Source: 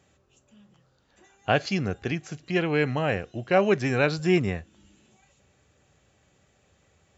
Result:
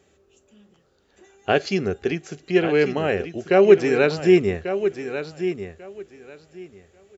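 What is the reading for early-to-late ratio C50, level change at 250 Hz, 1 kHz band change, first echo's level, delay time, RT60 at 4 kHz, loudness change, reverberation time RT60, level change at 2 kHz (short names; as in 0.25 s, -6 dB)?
none, +5.0 dB, +2.0 dB, -10.0 dB, 1.142 s, none, +5.0 dB, none, +2.5 dB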